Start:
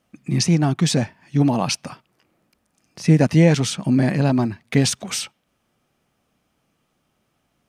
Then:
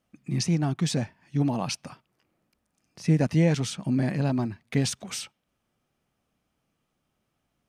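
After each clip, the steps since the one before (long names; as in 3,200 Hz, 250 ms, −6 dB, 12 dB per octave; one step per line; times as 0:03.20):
low-shelf EQ 100 Hz +5 dB
level −8.5 dB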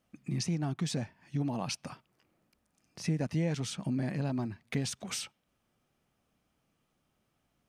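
downward compressor 2 to 1, threshold −35 dBFS, peak gain reduction 10.5 dB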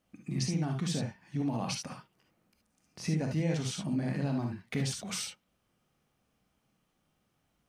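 reverb whose tail is shaped and stops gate 90 ms rising, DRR 2.5 dB
level −1 dB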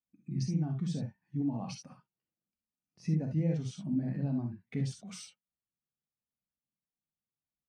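every bin expanded away from the loudest bin 1.5 to 1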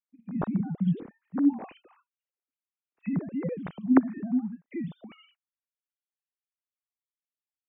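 three sine waves on the formant tracks
level +5 dB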